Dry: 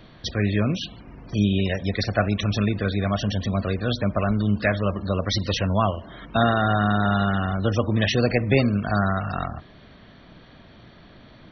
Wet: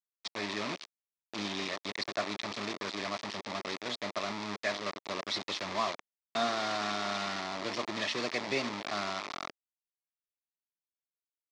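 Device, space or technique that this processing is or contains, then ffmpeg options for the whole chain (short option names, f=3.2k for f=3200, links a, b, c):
hand-held game console: -filter_complex "[0:a]asettb=1/sr,asplit=3[a][b][c];[a]atrim=end=5.654[d];[b]atrim=start=5.65:end=6.47,asetpts=PTS-STARTPTS,afade=t=in:d=0.004:c=qsin,afade=t=out:st=0.816:d=0.004:c=qsin,asplit=2[e][f];[f]adelay=13,volume=-9.5dB[g];[e][g]amix=inputs=2:normalize=0,atrim=end_sample=36162[h];[c]atrim=start=6.466[i];[d][h]acrossfade=d=0.004:c1=hsin:c2=qsin[j];[j][i]acrossfade=d=0.004:c1=qsin:c2=hsin,acrusher=bits=3:mix=0:aa=0.000001,highpass=430,equalizer=f=500:t=q:w=4:g=-9,equalizer=f=780:t=q:w=4:g=-5,equalizer=f=1.5k:t=q:w=4:g=-9,equalizer=f=2.9k:t=q:w=4:g=-6,lowpass=f=5.2k:w=0.5412,lowpass=f=5.2k:w=1.3066,volume=-6dB"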